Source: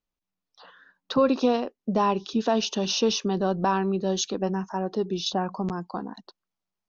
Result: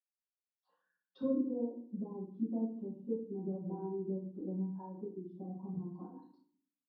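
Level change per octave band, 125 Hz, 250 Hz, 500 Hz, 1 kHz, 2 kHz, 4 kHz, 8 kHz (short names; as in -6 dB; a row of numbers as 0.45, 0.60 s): -11.0 dB, -10.5 dB, -15.5 dB, -26.5 dB, under -40 dB, under -40 dB, n/a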